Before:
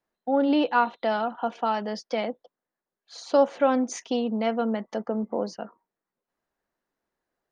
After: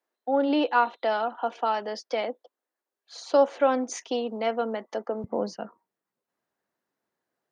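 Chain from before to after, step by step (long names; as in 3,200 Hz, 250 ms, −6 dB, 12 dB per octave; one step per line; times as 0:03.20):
high-pass filter 280 Hz 24 dB per octave, from 0:05.24 89 Hz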